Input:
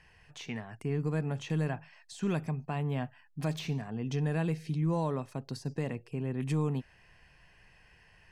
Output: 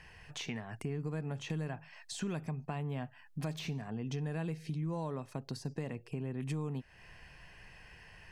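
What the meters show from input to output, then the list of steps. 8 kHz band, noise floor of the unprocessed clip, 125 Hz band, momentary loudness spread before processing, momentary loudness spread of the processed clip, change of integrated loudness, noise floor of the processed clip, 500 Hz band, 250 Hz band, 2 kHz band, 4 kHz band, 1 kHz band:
+1.0 dB, −62 dBFS, −5.5 dB, 10 LU, 17 LU, −5.5 dB, −59 dBFS, −6.0 dB, −5.5 dB, −3.5 dB, −0.5 dB, −5.5 dB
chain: downward compressor 3 to 1, threshold −44 dBFS, peak gain reduction 13.5 dB
level +5.5 dB

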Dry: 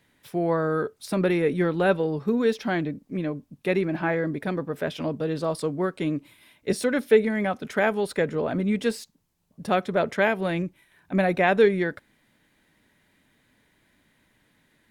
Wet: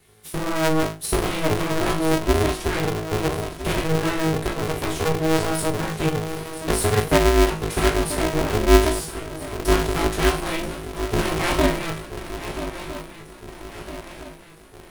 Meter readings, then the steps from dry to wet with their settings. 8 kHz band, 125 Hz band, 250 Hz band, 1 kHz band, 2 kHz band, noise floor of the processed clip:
+15.0 dB, +6.5 dB, +2.0 dB, +4.5 dB, +2.0 dB, −44 dBFS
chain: lower of the sound and its delayed copy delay 4.1 ms
graphic EQ with 15 bands 100 Hz +4 dB, 250 Hz +8 dB, 630 Hz −12 dB, 1,600 Hz −4 dB, 10,000 Hz +12 dB
in parallel at +2 dB: downward compressor, threshold −31 dBFS, peak gain reduction 16 dB
on the sum: tuned comb filter 53 Hz, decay 0.35 s, harmonics all, mix 100%
feedback echo with a long and a short gap by turns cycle 1,310 ms, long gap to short 3 to 1, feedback 51%, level −12 dB
ring modulator with a square carrier 160 Hz
level +8 dB

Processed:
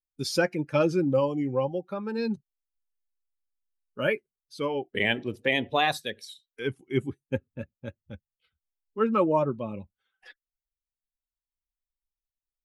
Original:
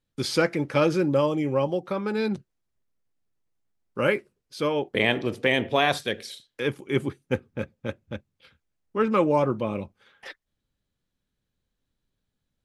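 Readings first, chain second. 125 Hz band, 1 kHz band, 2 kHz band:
−3.0 dB, −2.0 dB, −2.5 dB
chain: spectral dynamics exaggerated over time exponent 1.5
pitch vibrato 0.56 Hz 83 cents

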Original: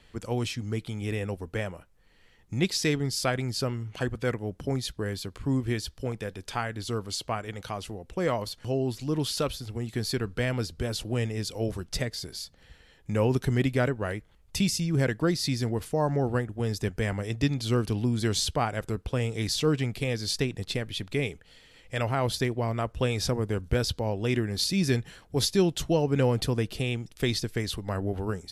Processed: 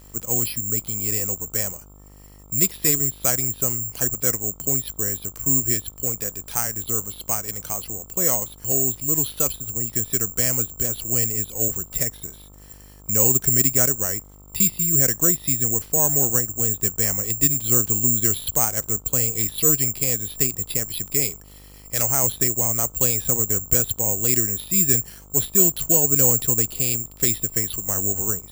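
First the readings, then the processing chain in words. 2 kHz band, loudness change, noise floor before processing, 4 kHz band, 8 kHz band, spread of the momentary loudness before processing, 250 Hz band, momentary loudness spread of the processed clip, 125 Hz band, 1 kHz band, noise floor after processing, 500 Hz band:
−1.0 dB, +10.0 dB, −58 dBFS, −2.5 dB, +19.5 dB, 8 LU, −1.0 dB, 8 LU, −1.0 dB, −1.0 dB, −46 dBFS, −1.0 dB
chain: bad sample-rate conversion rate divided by 6×, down filtered, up zero stuff
hum with harmonics 50 Hz, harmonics 27, −46 dBFS −6 dB per octave
floating-point word with a short mantissa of 4 bits
level −1 dB

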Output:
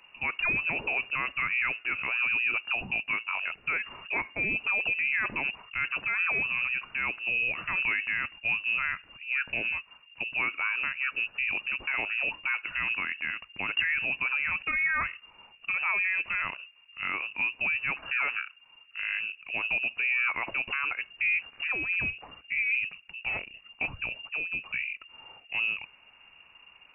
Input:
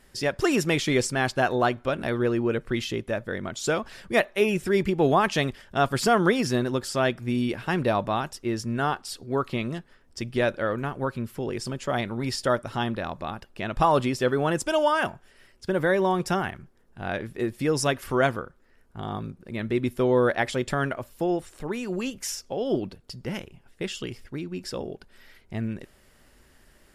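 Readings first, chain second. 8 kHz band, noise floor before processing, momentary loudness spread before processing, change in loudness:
below −40 dB, −59 dBFS, 13 LU, −2.0 dB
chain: brickwall limiter −20 dBFS, peak gain reduction 11.5 dB
voice inversion scrambler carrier 2,800 Hz

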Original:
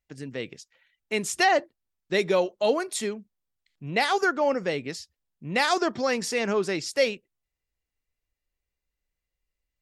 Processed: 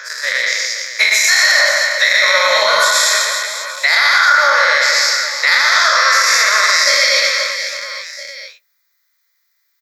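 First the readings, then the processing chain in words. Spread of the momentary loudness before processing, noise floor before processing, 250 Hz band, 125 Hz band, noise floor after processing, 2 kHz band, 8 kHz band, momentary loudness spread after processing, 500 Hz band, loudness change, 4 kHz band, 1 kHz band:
15 LU, below −85 dBFS, below −15 dB, below −15 dB, −65 dBFS, +20.0 dB, +20.5 dB, 10 LU, +4.0 dB, +14.5 dB, +21.0 dB, +12.5 dB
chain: every bin's largest magnitude spread in time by 240 ms
Butterworth high-pass 590 Hz 72 dB per octave
high-shelf EQ 9,300 Hz +7.5 dB
transient designer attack +8 dB, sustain +3 dB
downward compressor 4 to 1, threshold −20 dBFS, peak gain reduction 9 dB
phaser with its sweep stopped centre 2,800 Hz, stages 6
on a send: reverse bouncing-ball delay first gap 120 ms, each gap 1.4×, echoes 5
on the sum: boost into a limiter +18 dB
level −1 dB

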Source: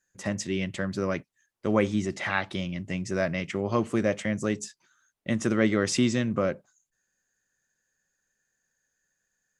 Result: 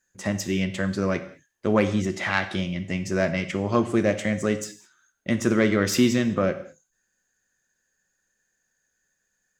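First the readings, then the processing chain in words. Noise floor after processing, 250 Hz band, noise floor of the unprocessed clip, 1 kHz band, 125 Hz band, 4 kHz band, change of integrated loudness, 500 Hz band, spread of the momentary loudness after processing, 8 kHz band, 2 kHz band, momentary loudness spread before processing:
−76 dBFS, +3.5 dB, −80 dBFS, +3.5 dB, +3.5 dB, +3.5 dB, +3.5 dB, +3.5 dB, 9 LU, +2.5 dB, +3.5 dB, 9 LU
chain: phase distortion by the signal itself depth 0.064 ms
reverb whose tail is shaped and stops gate 240 ms falling, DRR 8.5 dB
level +3 dB

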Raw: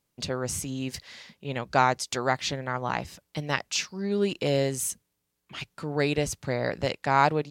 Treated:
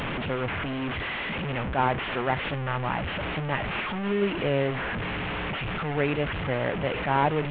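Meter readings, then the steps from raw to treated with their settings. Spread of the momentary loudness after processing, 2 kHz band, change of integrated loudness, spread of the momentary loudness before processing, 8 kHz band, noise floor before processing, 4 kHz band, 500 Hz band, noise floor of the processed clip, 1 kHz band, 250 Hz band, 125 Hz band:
5 LU, +3.0 dB, 0.0 dB, 14 LU, below −35 dB, −79 dBFS, −1.0 dB, +0.5 dB, −32 dBFS, −0.5 dB, +1.5 dB, +2.5 dB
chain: linear delta modulator 16 kbit/s, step −24 dBFS
level that may rise only so fast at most 150 dB per second

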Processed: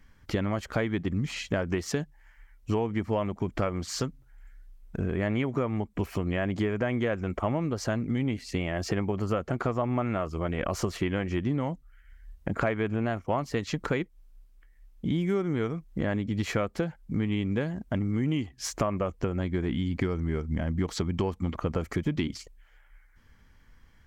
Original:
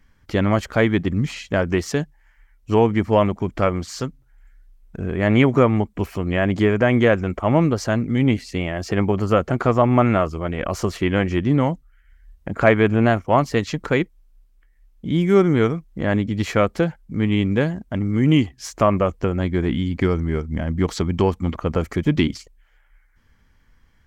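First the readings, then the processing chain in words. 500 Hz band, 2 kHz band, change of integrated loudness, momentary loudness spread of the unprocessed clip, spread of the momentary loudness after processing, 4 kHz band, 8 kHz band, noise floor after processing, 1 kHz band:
−11.0 dB, −10.0 dB, −10.0 dB, 9 LU, 4 LU, −7.5 dB, −3.5 dB, −58 dBFS, −11.0 dB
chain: downward compressor 6 to 1, threshold −25 dBFS, peak gain reduction 15 dB

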